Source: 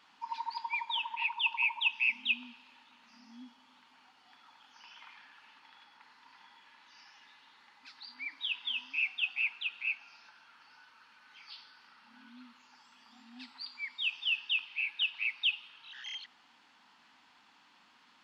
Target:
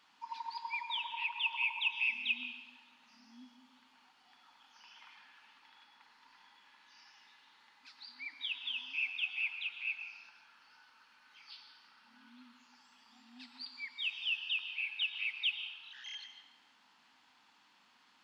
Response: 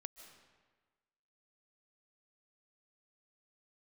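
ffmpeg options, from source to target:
-filter_complex "[0:a]highshelf=frequency=4700:gain=5[link_01];[1:a]atrim=start_sample=2205,asetrate=57330,aresample=44100[link_02];[link_01][link_02]afir=irnorm=-1:irlink=0,volume=3dB"

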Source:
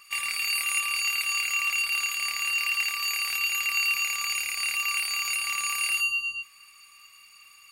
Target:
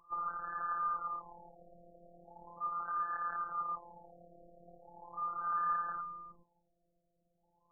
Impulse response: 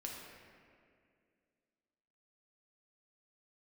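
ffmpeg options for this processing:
-af "afftfilt=real='hypot(re,im)*cos(PI*b)':imag='0':win_size=1024:overlap=0.75,afftfilt=real='re*lt(b*sr/1024,690*pow(1800/690,0.5+0.5*sin(2*PI*0.39*pts/sr)))':imag='im*lt(b*sr/1024,690*pow(1800/690,0.5+0.5*sin(2*PI*0.39*pts/sr)))':win_size=1024:overlap=0.75,volume=7.5dB"

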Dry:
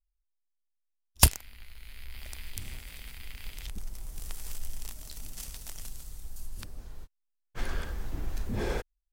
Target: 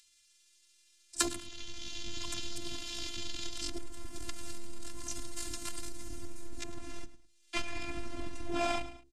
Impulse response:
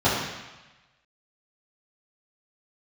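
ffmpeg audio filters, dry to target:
-filter_complex "[0:a]acrossover=split=140|1400[link_01][link_02][link_03];[link_03]acompressor=mode=upward:threshold=-48dB:ratio=2.5[link_04];[link_01][link_02][link_04]amix=inputs=3:normalize=0,bandreject=frequency=50:width_type=h:width=6,bandreject=frequency=100:width_type=h:width=6,bandreject=frequency=150:width_type=h:width=6,bandreject=frequency=200:width_type=h:width=6,afreqshift=66,asubboost=boost=4.5:cutoff=120,alimiter=limit=-15dB:level=0:latency=1:release=331,asetrate=64194,aresample=44100,atempo=0.686977,aecho=1:1:106|212:0.126|0.0352,acompressor=threshold=-29dB:ratio=5,lowpass=frequency=8800:width=0.5412,lowpass=frequency=8800:width=1.3066,lowshelf=frequency=200:gain=-8,afftfilt=real='hypot(re,im)*cos(PI*b)':imag='0':win_size=512:overlap=0.75,volume=13.5dB"

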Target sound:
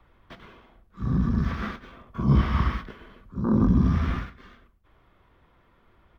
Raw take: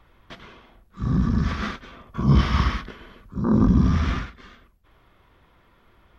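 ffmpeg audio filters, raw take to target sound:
ffmpeg -i in.wav -filter_complex "[0:a]acrossover=split=150|1500[link_01][link_02][link_03];[link_03]acrusher=bits=4:mode=log:mix=0:aa=0.000001[link_04];[link_01][link_02][link_04]amix=inputs=3:normalize=0,highshelf=frequency=3600:gain=-8.5,acrossover=split=2900[link_05][link_06];[link_06]acompressor=threshold=-45dB:ratio=4:attack=1:release=60[link_07];[link_05][link_07]amix=inputs=2:normalize=0,asplit=2[link_08][link_09];[link_09]adelay=110.8,volume=-21dB,highshelf=frequency=4000:gain=-2.49[link_10];[link_08][link_10]amix=inputs=2:normalize=0,volume=-2.5dB" out.wav

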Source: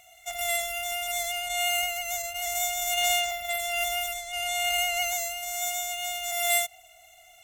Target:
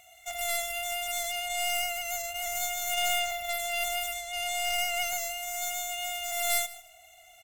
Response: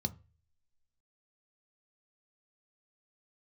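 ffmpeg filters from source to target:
-filter_complex "[0:a]bandreject=frequency=5800:width=17,aeval=exprs='clip(val(0),-1,0.0237)':channel_layout=same,asplit=2[link_01][link_02];[link_02]aecho=0:1:156|312:0.119|0.0214[link_03];[link_01][link_03]amix=inputs=2:normalize=0,volume=-1dB"

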